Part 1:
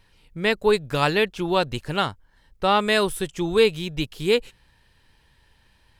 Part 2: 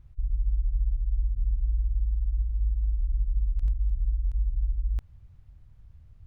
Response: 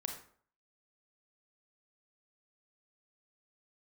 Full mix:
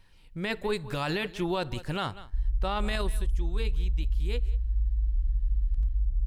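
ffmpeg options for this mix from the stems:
-filter_complex "[0:a]bandreject=frequency=440:width=12,volume=-4dB,afade=type=out:start_time=2.76:duration=0.49:silence=0.266073,asplit=3[link_01][link_02][link_03];[link_02]volume=-20dB[link_04];[link_03]volume=-21dB[link_05];[1:a]adelay=2150,volume=-5dB[link_06];[2:a]atrim=start_sample=2205[link_07];[link_04][link_07]afir=irnorm=-1:irlink=0[link_08];[link_05]aecho=0:1:190:1[link_09];[link_01][link_06][link_08][link_09]amix=inputs=4:normalize=0,lowshelf=frequency=61:gain=7.5,alimiter=limit=-20dB:level=0:latency=1:release=28"

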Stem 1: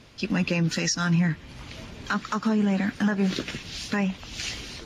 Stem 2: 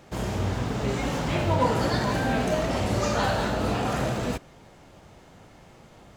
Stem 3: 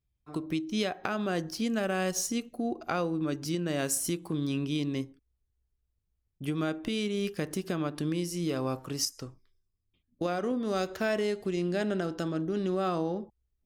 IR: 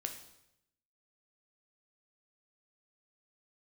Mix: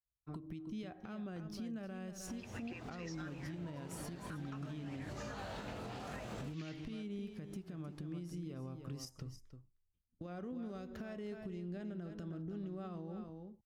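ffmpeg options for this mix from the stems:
-filter_complex "[0:a]bandpass=frequency=2000:width_type=q:width=0.89:csg=0,adelay=2200,volume=-16.5dB[link_01];[1:a]flanger=delay=19:depth=5.9:speed=0.96,adelay=2150,volume=-7dB,afade=type=in:start_time=4.88:duration=0.36:silence=0.473151[link_02];[2:a]bass=frequency=250:gain=13,treble=frequency=4000:gain=-7,volume=-6.5dB,asplit=2[link_03][link_04];[link_04]volume=-17.5dB[link_05];[link_02][link_03]amix=inputs=2:normalize=0,agate=range=-33dB:threshold=-57dB:ratio=3:detection=peak,acompressor=threshold=-37dB:ratio=6,volume=0dB[link_06];[link_05]aecho=0:1:310:1[link_07];[link_01][link_06][link_07]amix=inputs=3:normalize=0,alimiter=level_in=11.5dB:limit=-24dB:level=0:latency=1:release=230,volume=-11.5dB"

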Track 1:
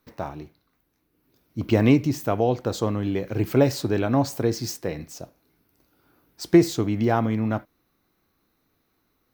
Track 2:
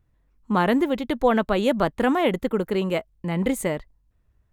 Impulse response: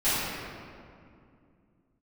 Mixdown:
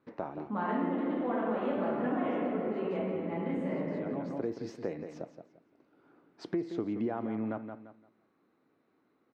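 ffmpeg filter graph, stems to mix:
-filter_complex "[0:a]lowpass=2200,equalizer=frequency=320:width_type=o:width=2.2:gain=5,alimiter=limit=-11dB:level=0:latency=1:release=229,volume=-2.5dB,asplit=2[link_01][link_02];[link_02]volume=-11.5dB[link_03];[1:a]lowpass=1800,volume=-12dB,asplit=3[link_04][link_05][link_06];[link_05]volume=-3.5dB[link_07];[link_06]apad=whole_len=411772[link_08];[link_01][link_08]sidechaincompress=threshold=-49dB:ratio=8:attack=16:release=637[link_09];[2:a]atrim=start_sample=2205[link_10];[link_07][link_10]afir=irnorm=-1:irlink=0[link_11];[link_03]aecho=0:1:172|344|516|688:1|0.24|0.0576|0.0138[link_12];[link_09][link_04][link_11][link_12]amix=inputs=4:normalize=0,highpass=190,acompressor=threshold=-37dB:ratio=2"

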